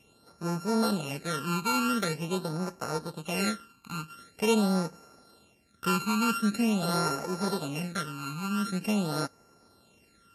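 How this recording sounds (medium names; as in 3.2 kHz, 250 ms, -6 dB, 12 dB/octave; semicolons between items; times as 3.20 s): a buzz of ramps at a fixed pitch in blocks of 32 samples; phasing stages 12, 0.45 Hz, lowest notch 580–3300 Hz; Vorbis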